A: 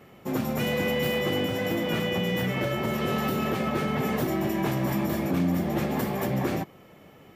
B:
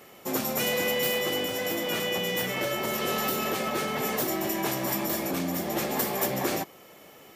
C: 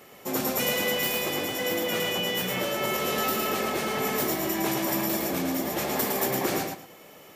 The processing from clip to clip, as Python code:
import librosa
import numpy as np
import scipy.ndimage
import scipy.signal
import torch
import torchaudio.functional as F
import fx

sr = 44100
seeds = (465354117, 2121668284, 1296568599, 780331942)

y1 = fx.bass_treble(x, sr, bass_db=-12, treble_db=14)
y1 = fx.rider(y1, sr, range_db=10, speed_s=2.0)
y1 = fx.high_shelf(y1, sr, hz=6100.0, db=-5.0)
y2 = fx.echo_feedback(y1, sr, ms=110, feedback_pct=22, wet_db=-4.0)